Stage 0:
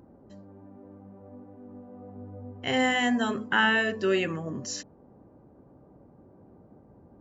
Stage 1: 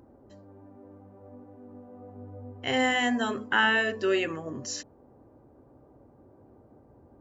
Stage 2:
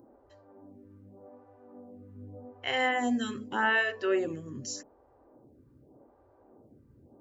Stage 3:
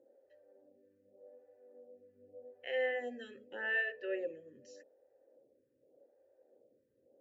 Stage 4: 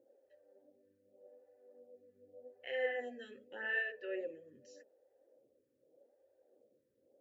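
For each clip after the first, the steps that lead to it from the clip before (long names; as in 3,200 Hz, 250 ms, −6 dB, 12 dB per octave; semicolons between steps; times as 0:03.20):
parametric band 180 Hz −14 dB 0.32 octaves
phaser with staggered stages 0.84 Hz
formant filter e; level +1 dB
flanger 1.1 Hz, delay 0.2 ms, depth 6.5 ms, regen +64%; level +2 dB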